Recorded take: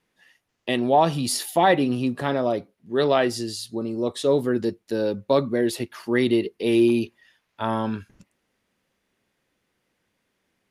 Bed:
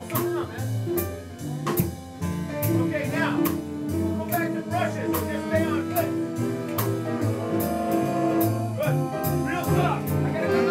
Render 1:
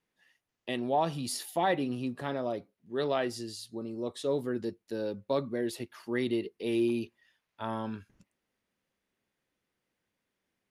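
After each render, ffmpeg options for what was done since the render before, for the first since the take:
ffmpeg -i in.wav -af "volume=-10dB" out.wav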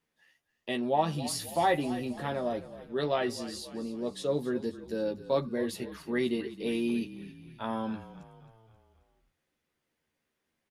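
ffmpeg -i in.wav -filter_complex "[0:a]asplit=2[link_01][link_02];[link_02]adelay=13,volume=-4.5dB[link_03];[link_01][link_03]amix=inputs=2:normalize=0,asplit=6[link_04][link_05][link_06][link_07][link_08][link_09];[link_05]adelay=267,afreqshift=-36,volume=-15dB[link_10];[link_06]adelay=534,afreqshift=-72,volume=-20.7dB[link_11];[link_07]adelay=801,afreqshift=-108,volume=-26.4dB[link_12];[link_08]adelay=1068,afreqshift=-144,volume=-32dB[link_13];[link_09]adelay=1335,afreqshift=-180,volume=-37.7dB[link_14];[link_04][link_10][link_11][link_12][link_13][link_14]amix=inputs=6:normalize=0" out.wav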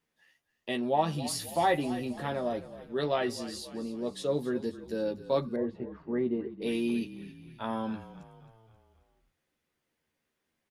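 ffmpeg -i in.wav -filter_complex "[0:a]asettb=1/sr,asplit=3[link_01][link_02][link_03];[link_01]atrim=end=5.564[link_04];[link_02]atrim=start=5.56:end=6.62,asetpts=PTS-STARTPTS,afade=type=in:duration=0.004:curve=qsin,afade=type=out:start_time=1.056:duration=0.004:curve=qsin,lowpass=1000[link_05];[link_03]atrim=start=6.616[link_06];[link_04][link_05]acrossfade=duration=0.004:curve1=hsin:curve2=qsin[link_07];[link_07][link_06]acrossfade=duration=0.004:curve1=qsin:curve2=hsin" out.wav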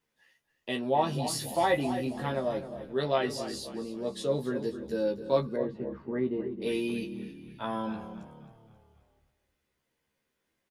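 ffmpeg -i in.wav -filter_complex "[0:a]asplit=2[link_01][link_02];[link_02]adelay=15,volume=-6dB[link_03];[link_01][link_03]amix=inputs=2:normalize=0,asplit=2[link_04][link_05];[link_05]adelay=264,lowpass=frequency=820:poles=1,volume=-10dB,asplit=2[link_06][link_07];[link_07]adelay=264,lowpass=frequency=820:poles=1,volume=0.29,asplit=2[link_08][link_09];[link_09]adelay=264,lowpass=frequency=820:poles=1,volume=0.29[link_10];[link_06][link_08][link_10]amix=inputs=3:normalize=0[link_11];[link_04][link_11]amix=inputs=2:normalize=0" out.wav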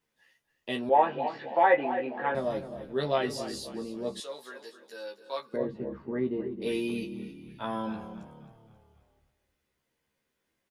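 ffmpeg -i in.wav -filter_complex "[0:a]asettb=1/sr,asplit=3[link_01][link_02][link_03];[link_01]atrim=end=0.894[link_04];[link_02]atrim=start=0.89:end=2.35,asetpts=PTS-STARTPTS,afade=type=in:duration=0.004:curve=qsin,afade=type=out:start_time=1.456:duration=0.004:curve=qsin,highpass=330,equalizer=frequency=500:width_type=q:width=4:gain=6,equalizer=frequency=850:width_type=q:width=4:gain=7,equalizer=frequency=1600:width_type=q:width=4:gain=9,equalizer=frequency=2300:width_type=q:width=4:gain=4,lowpass=frequency=2600:width=0.5412,lowpass=frequency=2600:width=1.3066[link_05];[link_03]atrim=start=2.346[link_06];[link_04][link_05]acrossfade=duration=0.004:curve1=hsin:curve2=qsin[link_07];[link_07][link_06]acrossfade=duration=0.004:curve1=qsin:curve2=hsin,asettb=1/sr,asplit=3[link_08][link_09][link_10];[link_08]atrim=end=4.204[link_11];[link_09]atrim=start=4.2:end=5.54,asetpts=PTS-STARTPTS,afade=type=in:duration=0.004:curve=qsin,afade=type=out:start_time=1.336:duration=0.004:curve=qsin,highpass=1000[link_12];[link_10]atrim=start=5.536[link_13];[link_11][link_12]acrossfade=duration=0.004:curve1=hsin:curve2=qsin[link_14];[link_14][link_13]acrossfade=duration=0.004:curve1=qsin:curve2=hsin,asettb=1/sr,asplit=3[link_15][link_16][link_17];[link_15]atrim=end=6.914[link_18];[link_16]atrim=start=6.91:end=7.49,asetpts=PTS-STARTPTS,afade=type=in:duration=0.004:curve=qsin,afade=type=out:start_time=0.576:duration=0.004:curve=qsin,asuperstop=centerf=1700:order=20:qfactor=4.9[link_19];[link_17]atrim=start=7.486[link_20];[link_18][link_19]acrossfade=duration=0.004:curve1=hsin:curve2=qsin[link_21];[link_21][link_20]acrossfade=duration=0.004:curve1=qsin:curve2=hsin" out.wav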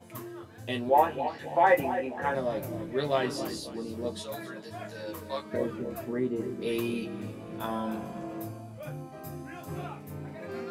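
ffmpeg -i in.wav -i bed.wav -filter_complex "[1:a]volume=-16dB[link_01];[0:a][link_01]amix=inputs=2:normalize=0" out.wav

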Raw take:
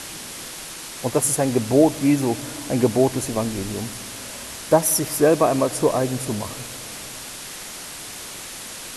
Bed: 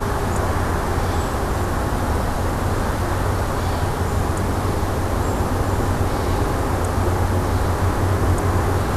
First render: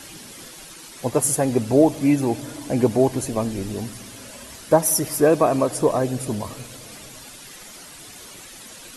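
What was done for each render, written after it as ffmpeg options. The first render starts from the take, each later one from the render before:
ffmpeg -i in.wav -af "afftdn=noise_reduction=10:noise_floor=-36" out.wav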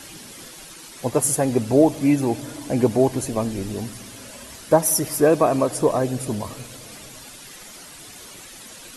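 ffmpeg -i in.wav -af anull out.wav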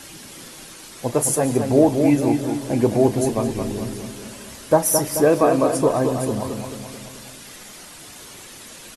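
ffmpeg -i in.wav -filter_complex "[0:a]asplit=2[link_01][link_02];[link_02]adelay=34,volume=-13.5dB[link_03];[link_01][link_03]amix=inputs=2:normalize=0,asplit=2[link_04][link_05];[link_05]adelay=217,lowpass=frequency=2900:poles=1,volume=-6dB,asplit=2[link_06][link_07];[link_07]adelay=217,lowpass=frequency=2900:poles=1,volume=0.52,asplit=2[link_08][link_09];[link_09]adelay=217,lowpass=frequency=2900:poles=1,volume=0.52,asplit=2[link_10][link_11];[link_11]adelay=217,lowpass=frequency=2900:poles=1,volume=0.52,asplit=2[link_12][link_13];[link_13]adelay=217,lowpass=frequency=2900:poles=1,volume=0.52,asplit=2[link_14][link_15];[link_15]adelay=217,lowpass=frequency=2900:poles=1,volume=0.52[link_16];[link_06][link_08][link_10][link_12][link_14][link_16]amix=inputs=6:normalize=0[link_17];[link_04][link_17]amix=inputs=2:normalize=0" out.wav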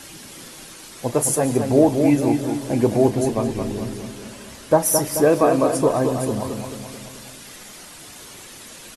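ffmpeg -i in.wav -filter_complex "[0:a]asettb=1/sr,asplit=3[link_01][link_02][link_03];[link_01]atrim=end=3.104[link_04];[link_02]atrim=start=3.1:end=4.81,asetpts=PTS-STARTPTS,afade=type=in:duration=0.004:curve=qsin,afade=type=out:start_time=1.706:duration=0.004:curve=qsin,highshelf=frequency=6900:gain=-5[link_05];[link_03]atrim=start=4.806[link_06];[link_04][link_05]acrossfade=duration=0.004:curve1=hsin:curve2=qsin[link_07];[link_07][link_06]acrossfade=duration=0.004:curve1=qsin:curve2=hsin" out.wav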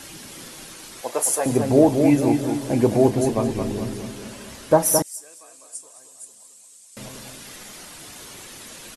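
ffmpeg -i in.wav -filter_complex "[0:a]asettb=1/sr,asplit=3[link_01][link_02][link_03];[link_01]atrim=end=1.014[link_04];[link_02]atrim=start=1.01:end=1.46,asetpts=PTS-STARTPTS,afade=type=in:duration=0.004:curve=qsin,afade=type=out:start_time=0.446:duration=0.004:curve=qsin,highpass=580[link_05];[link_03]atrim=start=1.456[link_06];[link_04][link_05]acrossfade=duration=0.004:curve1=hsin:curve2=qsin[link_07];[link_07][link_06]acrossfade=duration=0.004:curve1=qsin:curve2=hsin,asettb=1/sr,asplit=3[link_08][link_09][link_10];[link_08]atrim=end=5.024[link_11];[link_09]atrim=start=5.02:end=6.97,asetpts=PTS-STARTPTS,afade=type=in:duration=0.004:curve=qsin,afade=type=out:start_time=1.946:duration=0.004:curve=qsin,bandpass=frequency=8000:width_type=q:width=4[link_12];[link_10]atrim=start=6.966[link_13];[link_11][link_12]acrossfade=duration=0.004:curve1=hsin:curve2=qsin[link_14];[link_14][link_13]acrossfade=duration=0.004:curve1=qsin:curve2=hsin" out.wav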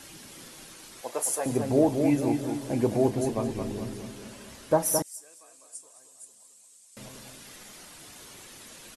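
ffmpeg -i in.wav -af "volume=-7dB" out.wav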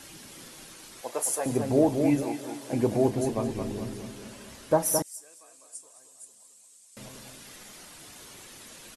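ffmpeg -i in.wav -filter_complex "[0:a]asettb=1/sr,asplit=3[link_01][link_02][link_03];[link_01]atrim=end=2.234[link_04];[link_02]atrim=start=2.23:end=2.73,asetpts=PTS-STARTPTS,afade=type=in:duration=0.004:curve=qsin,afade=type=out:start_time=0.496:duration=0.004:curve=qsin,highpass=frequency=590:poles=1[link_05];[link_03]atrim=start=2.726[link_06];[link_04][link_05]acrossfade=duration=0.004:curve1=hsin:curve2=qsin[link_07];[link_07][link_06]acrossfade=duration=0.004:curve1=qsin:curve2=hsin" out.wav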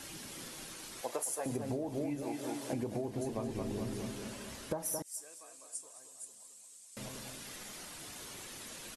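ffmpeg -i in.wav -af "alimiter=limit=-17dB:level=0:latency=1:release=193,acompressor=threshold=-33dB:ratio=12" out.wav

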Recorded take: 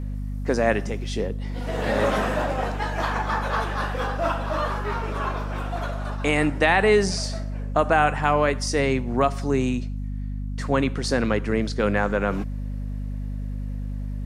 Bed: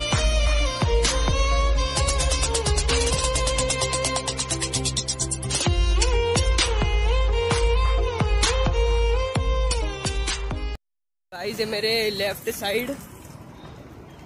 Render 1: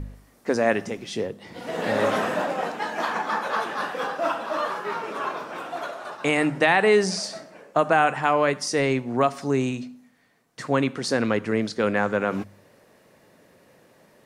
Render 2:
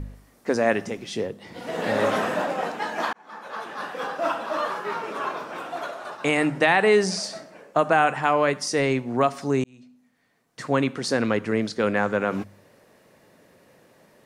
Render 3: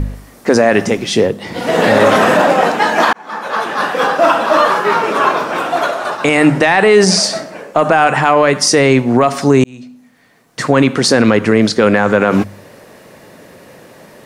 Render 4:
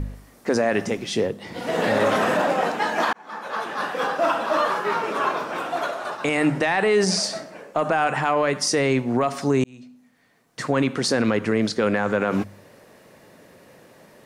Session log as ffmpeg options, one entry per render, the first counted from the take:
ffmpeg -i in.wav -af "bandreject=frequency=50:width_type=h:width=4,bandreject=frequency=100:width_type=h:width=4,bandreject=frequency=150:width_type=h:width=4,bandreject=frequency=200:width_type=h:width=4,bandreject=frequency=250:width_type=h:width=4" out.wav
ffmpeg -i in.wav -filter_complex "[0:a]asplit=3[link_01][link_02][link_03];[link_01]atrim=end=3.13,asetpts=PTS-STARTPTS,afade=type=out:start_time=3.126:duration=0.004:curve=hsin[link_04];[link_02]atrim=start=3.13:end=9.64,asetpts=PTS-STARTPTS,afade=type=in:duration=1.15,afade=type=out:start_time=6.506:duration=0.004:curve=hsin[link_05];[link_03]atrim=start=9.64,asetpts=PTS-STARTPTS,afade=type=in:duration=1.03[link_06];[link_04][link_05][link_06]concat=n=3:v=0:a=1" out.wav
ffmpeg -i in.wav -af "acontrast=37,alimiter=level_in=11dB:limit=-1dB:release=50:level=0:latency=1" out.wav
ffmpeg -i in.wav -af "volume=-10.5dB" out.wav

